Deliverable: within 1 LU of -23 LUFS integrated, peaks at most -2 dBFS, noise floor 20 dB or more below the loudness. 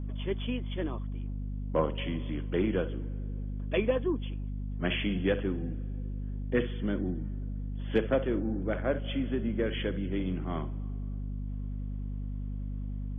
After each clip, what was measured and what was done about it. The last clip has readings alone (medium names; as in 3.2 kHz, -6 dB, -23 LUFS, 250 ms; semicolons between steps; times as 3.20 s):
hum 50 Hz; highest harmonic 250 Hz; hum level -33 dBFS; loudness -33.0 LUFS; peak level -14.5 dBFS; loudness target -23.0 LUFS
-> hum notches 50/100/150/200/250 Hz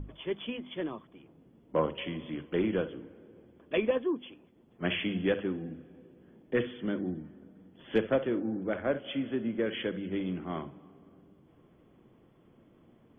hum not found; loudness -33.0 LUFS; peak level -15.0 dBFS; loudness target -23.0 LUFS
-> trim +10 dB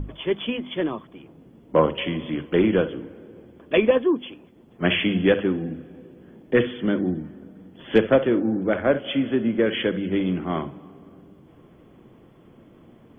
loudness -23.0 LUFS; peak level -5.0 dBFS; noise floor -52 dBFS